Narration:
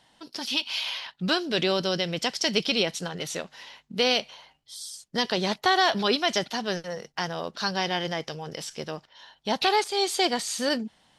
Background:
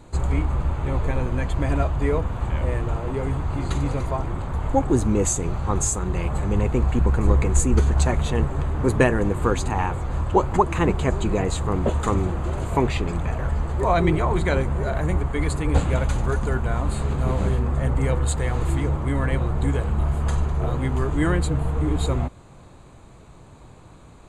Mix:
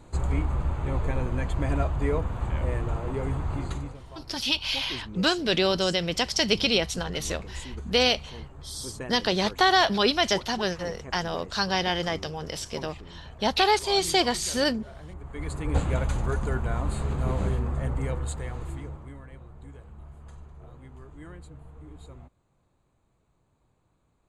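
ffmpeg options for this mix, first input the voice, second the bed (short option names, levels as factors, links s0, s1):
-filter_complex "[0:a]adelay=3950,volume=1.19[s0];[1:a]volume=3.76,afade=t=out:st=3.54:d=0.43:silence=0.158489,afade=t=in:st=15.18:d=0.66:silence=0.16788,afade=t=out:st=17.42:d=1.82:silence=0.112202[s1];[s0][s1]amix=inputs=2:normalize=0"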